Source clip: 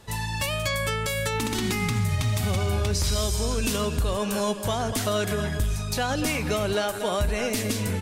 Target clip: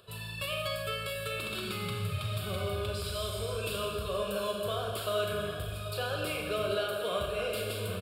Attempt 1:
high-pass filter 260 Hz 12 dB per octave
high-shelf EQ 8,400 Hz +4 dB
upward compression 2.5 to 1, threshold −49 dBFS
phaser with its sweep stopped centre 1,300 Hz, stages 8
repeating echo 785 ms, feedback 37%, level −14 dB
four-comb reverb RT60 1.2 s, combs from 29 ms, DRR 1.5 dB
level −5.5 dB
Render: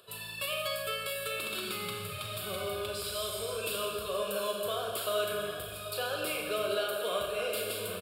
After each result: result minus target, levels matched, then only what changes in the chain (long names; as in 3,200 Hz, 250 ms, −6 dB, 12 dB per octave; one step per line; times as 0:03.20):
125 Hz band −11.0 dB; 8,000 Hz band +4.5 dB
change: high-pass filter 120 Hz 12 dB per octave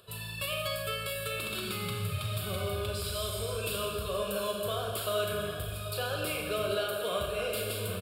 8,000 Hz band +4.0 dB
change: high-shelf EQ 8,400 Hz −4 dB